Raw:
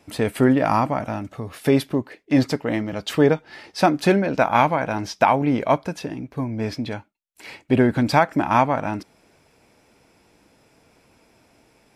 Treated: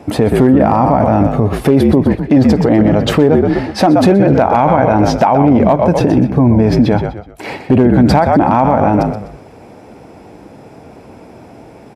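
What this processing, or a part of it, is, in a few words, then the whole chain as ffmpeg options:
mastering chain: -filter_complex "[0:a]equalizer=f=770:t=o:w=0.33:g=4,asplit=5[s0][s1][s2][s3][s4];[s1]adelay=125,afreqshift=-53,volume=0.316[s5];[s2]adelay=250,afreqshift=-106,volume=0.107[s6];[s3]adelay=375,afreqshift=-159,volume=0.0367[s7];[s4]adelay=500,afreqshift=-212,volume=0.0124[s8];[s0][s5][s6][s7][s8]amix=inputs=5:normalize=0,highpass=57,equalizer=f=510:t=o:w=2.4:g=1.5,acompressor=threshold=0.141:ratio=2,tiltshelf=f=1400:g=7.5,asoftclip=type=hard:threshold=0.596,alimiter=level_in=5.62:limit=0.891:release=50:level=0:latency=1,volume=0.891"

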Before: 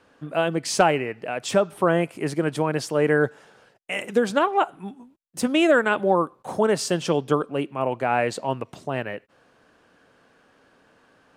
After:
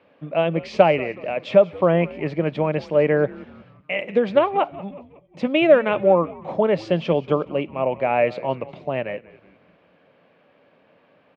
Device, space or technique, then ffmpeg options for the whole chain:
frequency-shifting delay pedal into a guitar cabinet: -filter_complex "[0:a]asplit=5[s0][s1][s2][s3][s4];[s1]adelay=184,afreqshift=-110,volume=0.112[s5];[s2]adelay=368,afreqshift=-220,volume=0.0562[s6];[s3]adelay=552,afreqshift=-330,volume=0.0282[s7];[s4]adelay=736,afreqshift=-440,volume=0.014[s8];[s0][s5][s6][s7][s8]amix=inputs=5:normalize=0,highpass=91,equalizer=f=170:t=q:w=4:g=6,equalizer=f=580:t=q:w=4:g=9,equalizer=f=1500:t=q:w=4:g=-7,equalizer=f=2300:t=q:w=4:g=7,lowpass=f=3600:w=0.5412,lowpass=f=3600:w=1.3066,volume=0.891"

